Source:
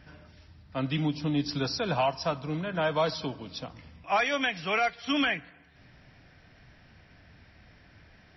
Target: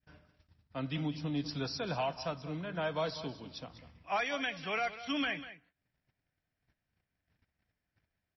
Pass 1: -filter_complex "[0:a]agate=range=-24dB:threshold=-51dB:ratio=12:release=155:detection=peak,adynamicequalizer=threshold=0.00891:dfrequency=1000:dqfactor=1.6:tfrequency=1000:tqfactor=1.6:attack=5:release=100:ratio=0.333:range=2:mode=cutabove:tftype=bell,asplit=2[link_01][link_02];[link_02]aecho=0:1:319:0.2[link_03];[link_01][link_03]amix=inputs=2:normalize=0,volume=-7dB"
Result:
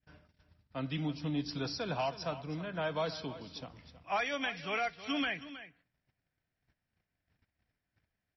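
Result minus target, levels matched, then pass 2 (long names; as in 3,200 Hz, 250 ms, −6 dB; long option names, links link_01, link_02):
echo 123 ms late
-filter_complex "[0:a]agate=range=-24dB:threshold=-51dB:ratio=12:release=155:detection=peak,adynamicequalizer=threshold=0.00891:dfrequency=1000:dqfactor=1.6:tfrequency=1000:tqfactor=1.6:attack=5:release=100:ratio=0.333:range=2:mode=cutabove:tftype=bell,asplit=2[link_01][link_02];[link_02]aecho=0:1:196:0.2[link_03];[link_01][link_03]amix=inputs=2:normalize=0,volume=-7dB"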